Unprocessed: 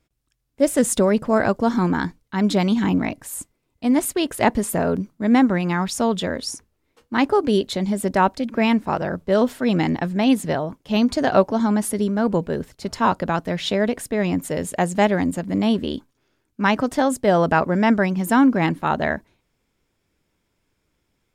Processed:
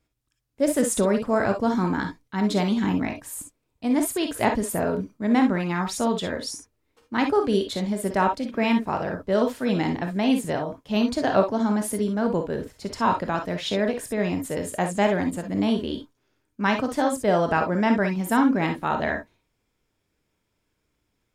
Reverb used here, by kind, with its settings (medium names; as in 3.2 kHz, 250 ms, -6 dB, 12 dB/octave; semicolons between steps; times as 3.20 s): gated-style reverb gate 80 ms rising, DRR 4.5 dB; trim -4.5 dB